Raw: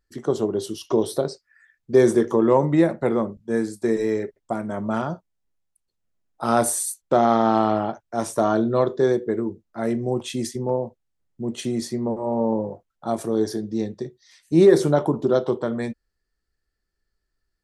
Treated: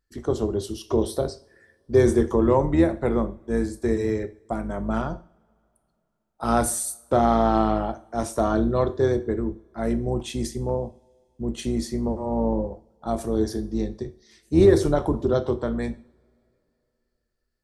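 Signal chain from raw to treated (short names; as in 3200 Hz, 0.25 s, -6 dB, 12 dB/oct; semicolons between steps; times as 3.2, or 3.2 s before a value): octaver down 2 oct, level -4 dB; two-slope reverb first 0.44 s, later 3 s, from -27 dB, DRR 12 dB; gain -2.5 dB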